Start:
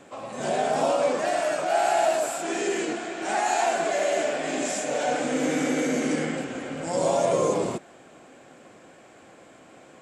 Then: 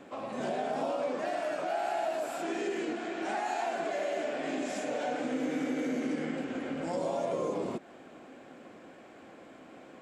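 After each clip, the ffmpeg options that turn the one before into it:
ffmpeg -i in.wav -af "equalizer=frequency=125:width_type=o:width=1:gain=-4,equalizer=frequency=250:width_type=o:width=1:gain=5,equalizer=frequency=8000:width_type=o:width=1:gain=-10,acompressor=threshold=-31dB:ratio=2.5,volume=-2dB" out.wav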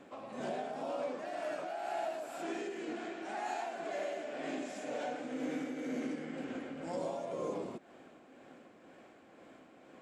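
ffmpeg -i in.wav -af "tremolo=f=2:d=0.38,volume=-4.5dB" out.wav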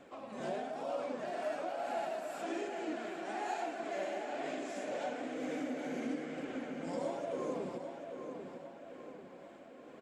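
ffmpeg -i in.wav -filter_complex "[0:a]flanger=delay=1.3:depth=4.7:regen=44:speed=1.1:shape=triangular,asplit=2[link_01][link_02];[link_02]adelay=793,lowpass=frequency=4700:poles=1,volume=-7dB,asplit=2[link_03][link_04];[link_04]adelay=793,lowpass=frequency=4700:poles=1,volume=0.51,asplit=2[link_05][link_06];[link_06]adelay=793,lowpass=frequency=4700:poles=1,volume=0.51,asplit=2[link_07][link_08];[link_08]adelay=793,lowpass=frequency=4700:poles=1,volume=0.51,asplit=2[link_09][link_10];[link_10]adelay=793,lowpass=frequency=4700:poles=1,volume=0.51,asplit=2[link_11][link_12];[link_12]adelay=793,lowpass=frequency=4700:poles=1,volume=0.51[link_13];[link_01][link_03][link_05][link_07][link_09][link_11][link_13]amix=inputs=7:normalize=0,volume=3.5dB" out.wav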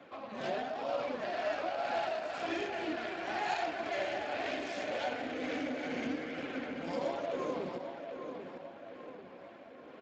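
ffmpeg -i in.wav -af "crystalizer=i=9.5:c=0,adynamicsmooth=sensitivity=5.5:basefreq=2100" -ar 16000 -c:a libspeex -b:a 21k out.spx

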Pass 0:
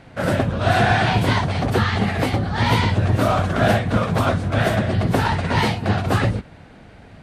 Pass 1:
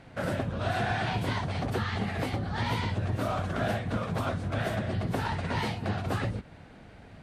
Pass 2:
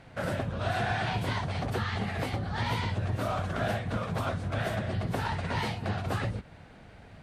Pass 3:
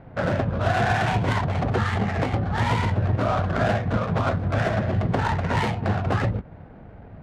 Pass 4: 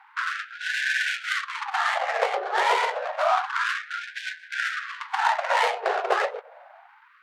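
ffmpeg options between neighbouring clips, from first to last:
ffmpeg -i in.wav -af "acompressor=threshold=-25dB:ratio=2,volume=-6dB" out.wav
ffmpeg -i in.wav -af "equalizer=frequency=280:width=1.3:gain=-3.5" out.wav
ffmpeg -i in.wav -af "adynamicsmooth=sensitivity=5:basefreq=990,volume=8.5dB" out.wav
ffmpeg -i in.wav -af "afftfilt=real='re*gte(b*sr/1024,370*pow(1500/370,0.5+0.5*sin(2*PI*0.29*pts/sr)))':imag='im*gte(b*sr/1024,370*pow(1500/370,0.5+0.5*sin(2*PI*0.29*pts/sr)))':win_size=1024:overlap=0.75,volume=4.5dB" out.wav

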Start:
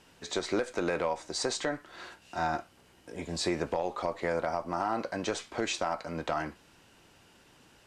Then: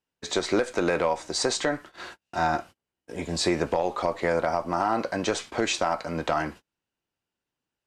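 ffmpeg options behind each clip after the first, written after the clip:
ffmpeg -i in.wav -af "agate=range=-34dB:threshold=-47dB:ratio=16:detection=peak,volume=6dB" out.wav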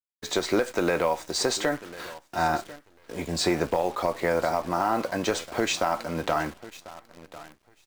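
ffmpeg -i in.wav -af "aecho=1:1:1045|2090:0.126|0.029,acrusher=bits=8:dc=4:mix=0:aa=0.000001" -ar 44100 -c:a adpcm_ima_wav out.wav

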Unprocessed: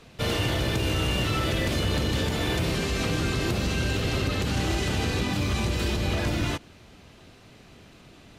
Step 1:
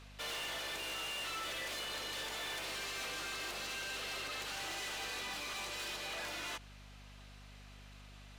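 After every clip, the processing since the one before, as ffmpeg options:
ffmpeg -i in.wav -af "highpass=800,aeval=exprs='val(0)+0.00316*(sin(2*PI*50*n/s)+sin(2*PI*2*50*n/s)/2+sin(2*PI*3*50*n/s)/3+sin(2*PI*4*50*n/s)/4+sin(2*PI*5*50*n/s)/5)':channel_layout=same,asoftclip=type=tanh:threshold=-34dB,volume=-4dB" out.wav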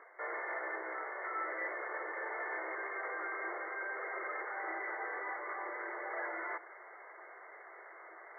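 ffmpeg -i in.wav -af "afftfilt=real='re*between(b*sr/4096,320,2200)':imag='im*between(b*sr/4096,320,2200)':win_size=4096:overlap=0.75,areverse,acompressor=mode=upward:threshold=-50dB:ratio=2.5,areverse,afftfilt=real='re*gte(hypot(re,im),0.000501)':imag='im*gte(hypot(re,im),0.000501)':win_size=1024:overlap=0.75,volume=5.5dB" out.wav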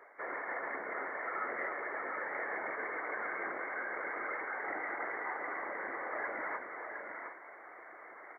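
ffmpeg -i in.wav -filter_complex "[0:a]afftfilt=real='hypot(re,im)*cos(2*PI*random(0))':imag='hypot(re,im)*sin(2*PI*random(1))':win_size=512:overlap=0.75,asplit=2[link_01][link_02];[link_02]aecho=0:1:272|714|755:0.335|0.473|0.237[link_03];[link_01][link_03]amix=inputs=2:normalize=0,volume=6dB" out.wav

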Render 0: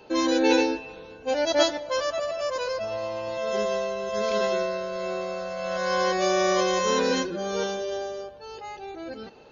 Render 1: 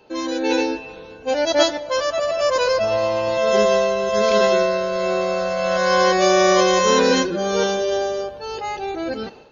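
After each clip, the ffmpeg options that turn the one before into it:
ffmpeg -i in.wav -af "dynaudnorm=framelen=420:gausssize=3:maxgain=14dB,volume=-2.5dB" out.wav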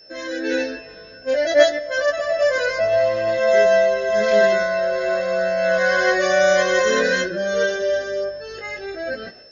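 ffmpeg -i in.wav -af "flanger=delay=16.5:depth=3.7:speed=0.54,aeval=exprs='val(0)+0.00708*sin(2*PI*5300*n/s)':channel_layout=same,superequalizer=8b=2.24:9b=0.282:11b=3.55,volume=-2dB" out.wav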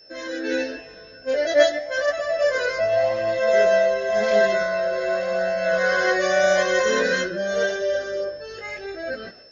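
ffmpeg -i in.wav -af "flanger=delay=2.2:depth=9:regen=-85:speed=0.89:shape=sinusoidal,volume=2dB" out.wav

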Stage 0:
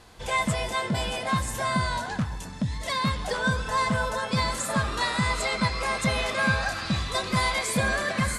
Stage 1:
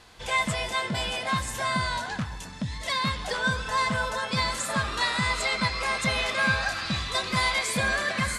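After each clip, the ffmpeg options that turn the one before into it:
ffmpeg -i in.wav -af "equalizer=frequency=3000:width=0.38:gain=6.5,volume=-4dB" out.wav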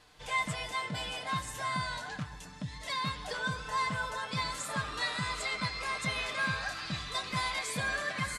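ffmpeg -i in.wav -af "aecho=1:1:6.7:0.48,volume=-8.5dB" out.wav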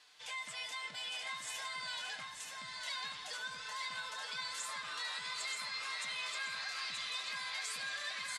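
ffmpeg -i in.wav -af "alimiter=level_in=6.5dB:limit=-24dB:level=0:latency=1:release=89,volume=-6.5dB,bandpass=frequency=4500:width_type=q:width=0.53:csg=0,aecho=1:1:929|1858|2787|3716:0.631|0.221|0.0773|0.0271,volume=1dB" out.wav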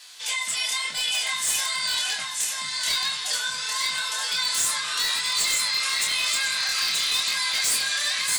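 ffmpeg -i in.wav -filter_complex "[0:a]crystalizer=i=4.5:c=0,asplit=2[link_01][link_02];[link_02]aeval=exprs='(mod(15.8*val(0)+1,2)-1)/15.8':channel_layout=same,volume=-3.5dB[link_03];[link_01][link_03]amix=inputs=2:normalize=0,flanger=delay=22.5:depth=7.2:speed=0.94,volume=7dB" out.wav

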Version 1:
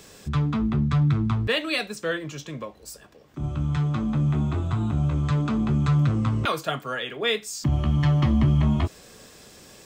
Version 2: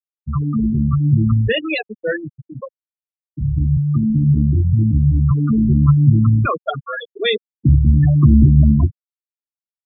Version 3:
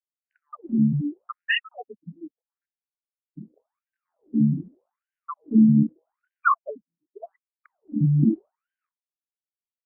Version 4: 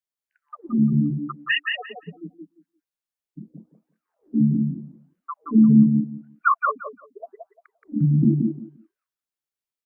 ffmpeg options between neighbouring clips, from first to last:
ffmpeg -i in.wav -filter_complex "[0:a]bandreject=frequency=50:width_type=h:width=6,bandreject=frequency=100:width_type=h:width=6,bandreject=frequency=150:width_type=h:width=6,bandreject=frequency=200:width_type=h:width=6,bandreject=frequency=250:width_type=h:width=6,afftfilt=real='re*gte(hypot(re,im),0.158)':imag='im*gte(hypot(re,im),0.158)':win_size=1024:overlap=0.75,acrossover=split=200|1600[link_01][link_02][link_03];[link_01]dynaudnorm=framelen=280:gausssize=9:maxgain=5dB[link_04];[link_04][link_02][link_03]amix=inputs=3:normalize=0,volume=7dB" out.wav
ffmpeg -i in.wav -filter_complex "[0:a]agate=range=-8dB:threshold=-20dB:ratio=16:detection=peak,acrossover=split=2600[link_01][link_02];[link_02]acompressor=threshold=-31dB:ratio=4:attack=1:release=60[link_03];[link_01][link_03]amix=inputs=2:normalize=0,afftfilt=real='re*between(b*sr/1024,200*pow(2200/200,0.5+0.5*sin(2*PI*0.83*pts/sr))/1.41,200*pow(2200/200,0.5+0.5*sin(2*PI*0.83*pts/sr))*1.41)':imag='im*between(b*sr/1024,200*pow(2200/200,0.5+0.5*sin(2*PI*0.83*pts/sr))/1.41,200*pow(2200/200,0.5+0.5*sin(2*PI*0.83*pts/sr))*1.41)':win_size=1024:overlap=0.75,volume=2dB" out.wav
ffmpeg -i in.wav -af "aecho=1:1:174|348|522:0.631|0.114|0.0204,volume=1dB" out.wav

